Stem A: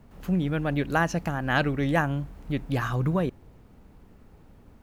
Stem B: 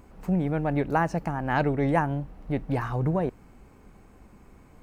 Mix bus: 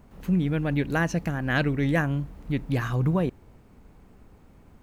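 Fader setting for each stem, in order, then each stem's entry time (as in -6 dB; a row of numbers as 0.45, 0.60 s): -1.0, -7.5 dB; 0.00, 0.00 s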